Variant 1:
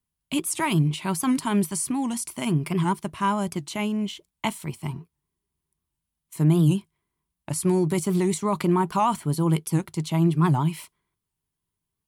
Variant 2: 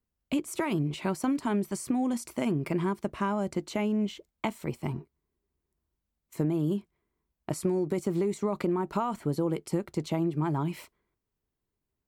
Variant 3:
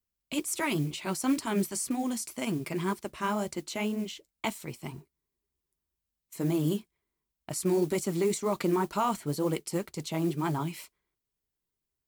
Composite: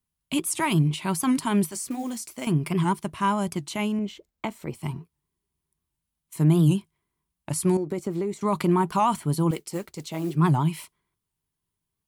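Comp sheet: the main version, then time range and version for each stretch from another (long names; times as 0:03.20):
1
0:01.71–0:02.47: punch in from 3
0:03.99–0:04.75: punch in from 2
0:07.77–0:08.41: punch in from 2
0:09.51–0:10.35: punch in from 3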